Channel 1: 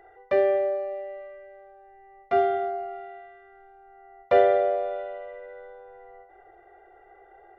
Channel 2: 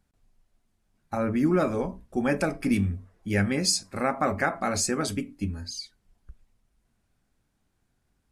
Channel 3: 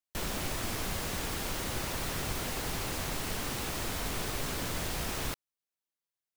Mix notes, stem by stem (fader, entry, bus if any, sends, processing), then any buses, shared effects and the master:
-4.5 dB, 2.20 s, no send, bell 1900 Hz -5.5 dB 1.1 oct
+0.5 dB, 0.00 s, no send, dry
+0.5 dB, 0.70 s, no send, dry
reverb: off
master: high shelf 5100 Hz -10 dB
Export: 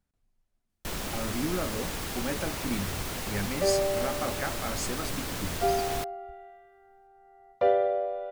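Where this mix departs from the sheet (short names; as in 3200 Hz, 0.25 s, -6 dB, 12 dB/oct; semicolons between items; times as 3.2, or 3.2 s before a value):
stem 1: entry 2.20 s -> 3.30 s; stem 2 +0.5 dB -> -8.5 dB; master: missing high shelf 5100 Hz -10 dB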